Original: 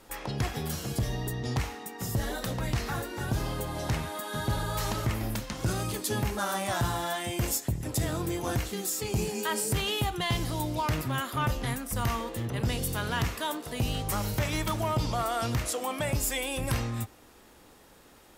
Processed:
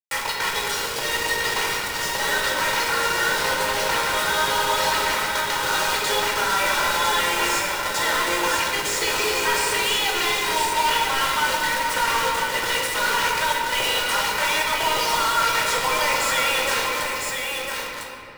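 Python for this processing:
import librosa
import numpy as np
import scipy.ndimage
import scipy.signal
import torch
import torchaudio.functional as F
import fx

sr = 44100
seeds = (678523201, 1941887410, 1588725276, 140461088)

p1 = scipy.signal.sosfilt(scipy.signal.butter(2, 1400.0, 'highpass', fs=sr, output='sos'), x)
p2 = fx.dereverb_blind(p1, sr, rt60_s=0.5)
p3 = scipy.signal.sosfilt(scipy.signal.butter(2, 6900.0, 'lowpass', fs=sr, output='sos'), p2)
p4 = fx.high_shelf(p3, sr, hz=2100.0, db=-10.5)
p5 = p4 + 0.98 * np.pad(p4, (int(2.1 * sr / 1000.0), 0))[:len(p4)]
p6 = fx.over_compress(p5, sr, threshold_db=-44.0, ratio=-0.5)
p7 = p5 + F.gain(torch.from_numpy(p6), 1.0).numpy()
p8 = 10.0 ** (-31.5 / 20.0) * np.tanh(p7 / 10.0 ** (-31.5 / 20.0))
p9 = fx.quant_companded(p8, sr, bits=2)
p10 = p9 + fx.echo_single(p9, sr, ms=1003, db=-5.5, dry=0)
p11 = fx.room_shoebox(p10, sr, seeds[0], volume_m3=140.0, walls='hard', distance_m=0.53)
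p12 = fx.slew_limit(p11, sr, full_power_hz=310.0)
y = F.gain(torch.from_numpy(p12), 3.5).numpy()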